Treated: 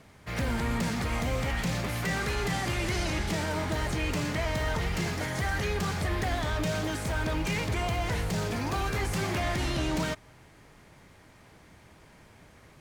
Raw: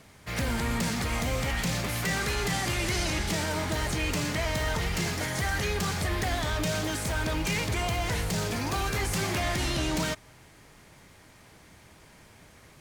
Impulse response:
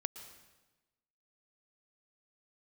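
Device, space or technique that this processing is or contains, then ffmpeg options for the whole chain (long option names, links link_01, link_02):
behind a face mask: -af "highshelf=frequency=3300:gain=-7"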